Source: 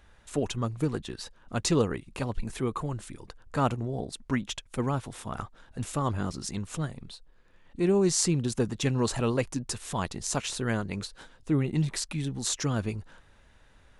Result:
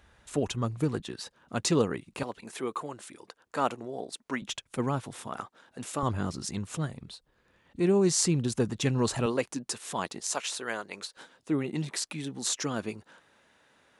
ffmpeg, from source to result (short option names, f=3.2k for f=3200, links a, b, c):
-af "asetnsamples=n=441:p=0,asendcmd='1 highpass f 130;2.23 highpass f 340;4.42 highpass f 120;5.27 highpass f 250;6.03 highpass f 71;9.26 highpass f 240;10.2 highpass f 510;11.17 highpass f 230',highpass=52"